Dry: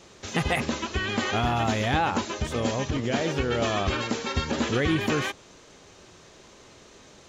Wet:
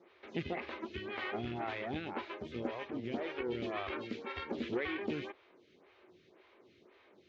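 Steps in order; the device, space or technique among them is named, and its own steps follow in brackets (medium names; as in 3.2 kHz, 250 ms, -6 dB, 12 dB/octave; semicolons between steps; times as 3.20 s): vibe pedal into a guitar amplifier (lamp-driven phase shifter 1.9 Hz; valve stage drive 19 dB, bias 0.65; cabinet simulation 100–3900 Hz, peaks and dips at 140 Hz -6 dB, 360 Hz +8 dB, 2.2 kHz +6 dB); trim -7.5 dB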